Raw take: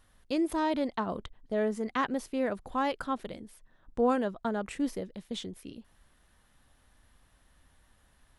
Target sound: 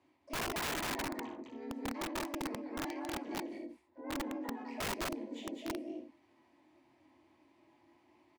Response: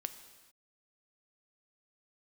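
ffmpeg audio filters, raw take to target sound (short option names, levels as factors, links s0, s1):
-filter_complex "[0:a]aecho=1:1:4.1:0.42,areverse,acompressor=threshold=0.0126:ratio=16,areverse,asplit=3[s0][s1][s2];[s0]bandpass=f=300:t=q:w=8,volume=1[s3];[s1]bandpass=f=870:t=q:w=8,volume=0.501[s4];[s2]bandpass=f=2240:t=q:w=8,volume=0.355[s5];[s3][s4][s5]amix=inputs=3:normalize=0,flanger=delay=19.5:depth=4.1:speed=0.36,asplit=3[s6][s7][s8];[s7]asetrate=37084,aresample=44100,atempo=1.18921,volume=0.794[s9];[s8]asetrate=88200,aresample=44100,atempo=0.5,volume=0.398[s10];[s6][s9][s10]amix=inputs=3:normalize=0,afreqshift=54,asplit=2[s11][s12];[s12]aecho=0:1:58.31|207|271.1:0.501|0.708|0.316[s13];[s11][s13]amix=inputs=2:normalize=0,aeval=exprs='(mod(150*val(0)+1,2)-1)/150':c=same,volume=3.98"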